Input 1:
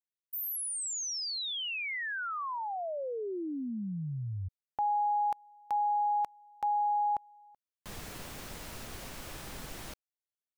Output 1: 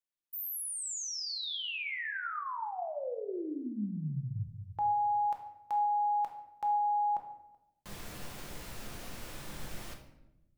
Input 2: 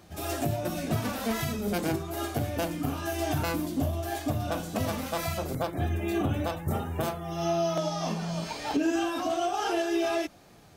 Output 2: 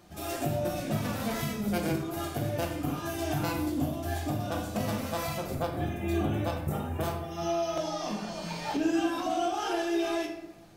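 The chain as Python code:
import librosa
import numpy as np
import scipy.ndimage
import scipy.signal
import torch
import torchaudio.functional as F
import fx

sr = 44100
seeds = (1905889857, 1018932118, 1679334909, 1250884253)

y = fx.room_shoebox(x, sr, seeds[0], volume_m3=280.0, walls='mixed', distance_m=0.84)
y = y * librosa.db_to_amplitude(-3.5)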